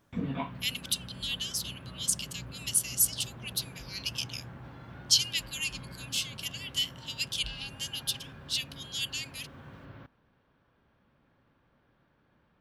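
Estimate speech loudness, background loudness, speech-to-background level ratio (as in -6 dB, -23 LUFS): -31.5 LUFS, -45.5 LUFS, 14.0 dB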